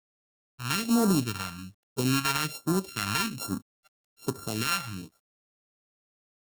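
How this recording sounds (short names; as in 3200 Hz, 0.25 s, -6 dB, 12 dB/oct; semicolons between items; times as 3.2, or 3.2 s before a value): a buzz of ramps at a fixed pitch in blocks of 32 samples; phasing stages 2, 1.2 Hz, lowest notch 360–2500 Hz; a quantiser's noise floor 12-bit, dither none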